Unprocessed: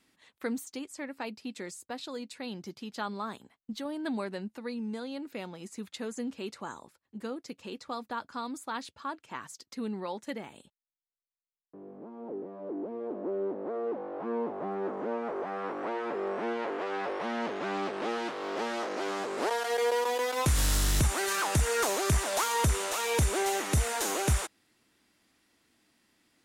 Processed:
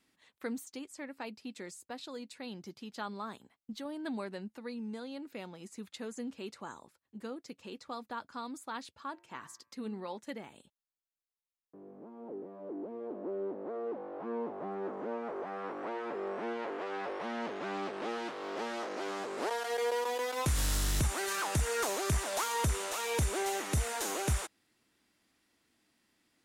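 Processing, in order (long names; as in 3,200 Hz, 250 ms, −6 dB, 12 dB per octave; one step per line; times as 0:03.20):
0:09.11–0:10.17: hum removal 114.3 Hz, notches 23
level −4.5 dB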